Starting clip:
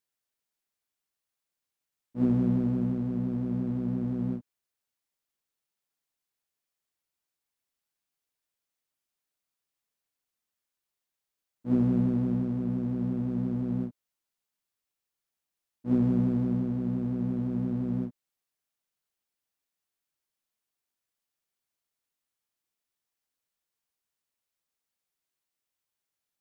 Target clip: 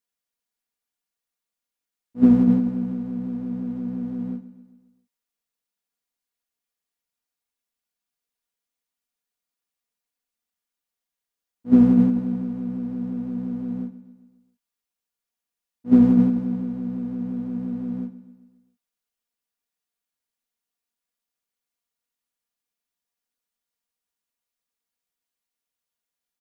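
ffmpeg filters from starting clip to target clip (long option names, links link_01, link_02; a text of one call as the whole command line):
ffmpeg -i in.wav -filter_complex "[0:a]agate=range=-10dB:threshold=-24dB:ratio=16:detection=peak,aecho=1:1:4.2:0.63,asplit=2[link_01][link_02];[link_02]aecho=0:1:133|266|399|532|665:0.158|0.0872|0.0479|0.0264|0.0145[link_03];[link_01][link_03]amix=inputs=2:normalize=0,volume=8dB" out.wav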